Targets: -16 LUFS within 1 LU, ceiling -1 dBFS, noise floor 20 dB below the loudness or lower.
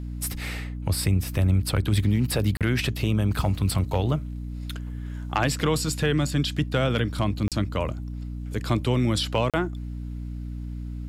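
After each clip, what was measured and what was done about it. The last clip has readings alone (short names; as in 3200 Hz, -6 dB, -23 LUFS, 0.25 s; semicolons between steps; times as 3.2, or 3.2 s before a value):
dropouts 3; longest dropout 37 ms; hum 60 Hz; harmonics up to 300 Hz; hum level -31 dBFS; loudness -26.0 LUFS; peak -11.0 dBFS; loudness target -16.0 LUFS
-> interpolate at 2.57/7.48/9.5, 37 ms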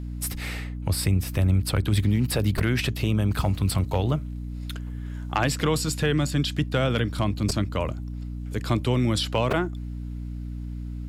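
dropouts 0; hum 60 Hz; harmonics up to 300 Hz; hum level -31 dBFS
-> de-hum 60 Hz, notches 5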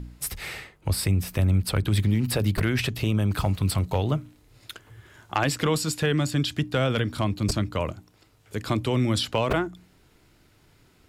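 hum none; loudness -26.0 LUFS; peak -11.5 dBFS; loudness target -16.0 LUFS
-> gain +10 dB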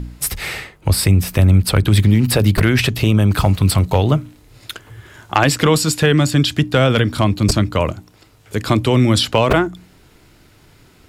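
loudness -16.0 LUFS; peak -1.5 dBFS; noise floor -50 dBFS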